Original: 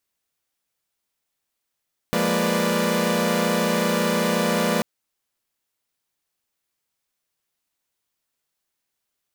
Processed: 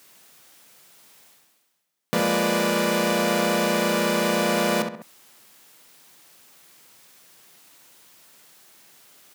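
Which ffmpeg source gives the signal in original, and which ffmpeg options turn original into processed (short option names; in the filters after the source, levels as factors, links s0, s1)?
-f lavfi -i "aevalsrc='0.0668*((2*mod(174.61*t,1)-1)+(2*mod(207.65*t,1)-1)+(2*mod(233.08*t,1)-1)+(2*mod(493.88*t,1)-1)+(2*mod(587.33*t,1)-1))':d=2.69:s=44100"
-filter_complex "[0:a]asplit=2[s0][s1];[s1]adelay=66,lowpass=f=2900:p=1,volume=0.501,asplit=2[s2][s3];[s3]adelay=66,lowpass=f=2900:p=1,volume=0.23,asplit=2[s4][s5];[s5]adelay=66,lowpass=f=2900:p=1,volume=0.23[s6];[s0][s2][s4][s6]amix=inputs=4:normalize=0,areverse,acompressor=mode=upward:threshold=0.0282:ratio=2.5,areverse,highpass=f=120:w=0.5412,highpass=f=120:w=1.3066"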